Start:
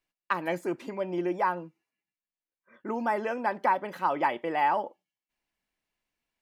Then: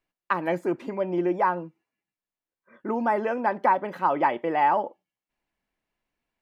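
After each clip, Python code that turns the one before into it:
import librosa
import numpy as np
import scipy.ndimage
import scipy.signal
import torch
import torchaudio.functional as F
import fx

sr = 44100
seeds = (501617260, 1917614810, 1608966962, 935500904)

y = fx.high_shelf(x, sr, hz=2800.0, db=-11.0)
y = y * 10.0 ** (5.0 / 20.0)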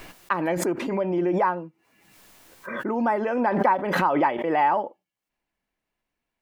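y = fx.pre_swell(x, sr, db_per_s=39.0)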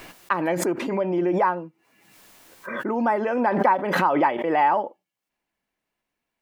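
y = fx.low_shelf(x, sr, hz=75.0, db=-10.0)
y = y * 10.0 ** (1.5 / 20.0)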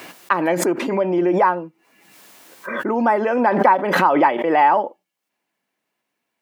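y = scipy.signal.sosfilt(scipy.signal.butter(2, 170.0, 'highpass', fs=sr, output='sos'), x)
y = y * 10.0 ** (5.0 / 20.0)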